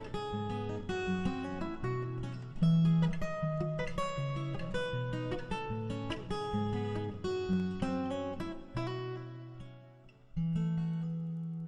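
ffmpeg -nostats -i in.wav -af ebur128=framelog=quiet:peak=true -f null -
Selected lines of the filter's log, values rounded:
Integrated loudness:
  I:         -35.5 LUFS
  Threshold: -45.8 LUFS
Loudness range:
  LRA:         5.1 LU
  Threshold: -55.5 LUFS
  LRA low:   -38.4 LUFS
  LRA high:  -33.3 LUFS
True peak:
  Peak:      -19.1 dBFS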